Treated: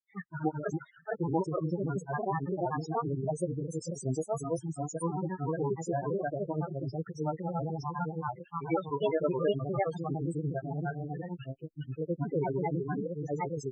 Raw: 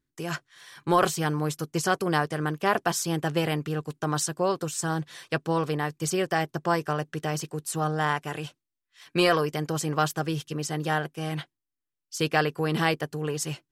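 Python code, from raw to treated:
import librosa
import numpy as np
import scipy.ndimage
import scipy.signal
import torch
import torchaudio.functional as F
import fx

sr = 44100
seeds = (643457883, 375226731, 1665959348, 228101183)

y = fx.granulator(x, sr, seeds[0], grain_ms=103.0, per_s=29.0, spray_ms=597.0, spread_st=3)
y = fx.spec_topn(y, sr, count=8)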